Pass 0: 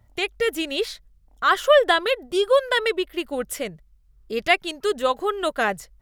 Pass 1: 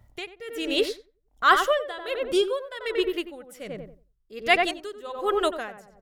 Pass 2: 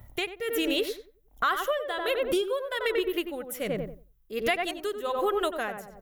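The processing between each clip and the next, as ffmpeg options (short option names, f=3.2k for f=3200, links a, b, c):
-filter_complex "[0:a]asplit=2[a][b];[b]adelay=91,lowpass=f=1.2k:p=1,volume=-4dB,asplit=2[c][d];[d]adelay=91,lowpass=f=1.2k:p=1,volume=0.36,asplit=2[e][f];[f]adelay=91,lowpass=f=1.2k:p=1,volume=0.36,asplit=2[g][h];[h]adelay=91,lowpass=f=1.2k:p=1,volume=0.36,asplit=2[i][j];[j]adelay=91,lowpass=f=1.2k:p=1,volume=0.36[k];[a][c][e][g][i][k]amix=inputs=6:normalize=0,aeval=exprs='val(0)*pow(10,-20*(0.5-0.5*cos(2*PI*1.3*n/s))/20)':c=same,volume=1.5dB"
-af "acompressor=threshold=-30dB:ratio=10,aexciter=amount=4.6:drive=1.4:freq=11k,equalizer=f=4.8k:t=o:w=0.29:g=-5.5,volume=6.5dB"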